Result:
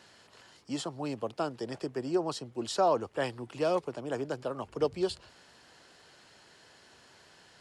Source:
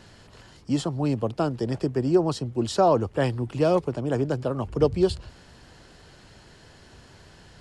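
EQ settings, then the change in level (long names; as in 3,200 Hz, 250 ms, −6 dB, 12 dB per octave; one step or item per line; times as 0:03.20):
high-pass filter 580 Hz 6 dB per octave
−3.5 dB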